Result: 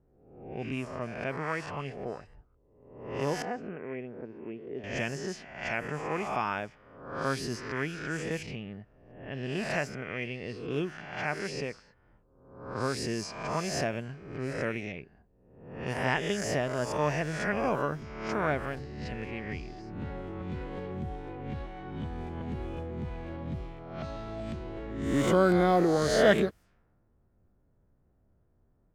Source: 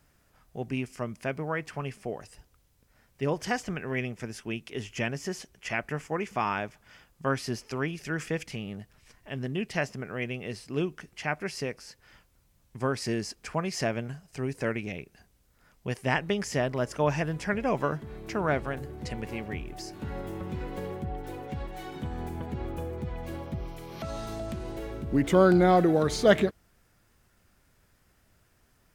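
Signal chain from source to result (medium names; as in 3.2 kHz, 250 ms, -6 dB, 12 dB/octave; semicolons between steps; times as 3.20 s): reverse spectral sustain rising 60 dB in 0.90 s; 3.42–4.84 s: band-pass filter 430 Hz, Q 0.88; level-controlled noise filter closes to 570 Hz, open at -24.5 dBFS; trim -4 dB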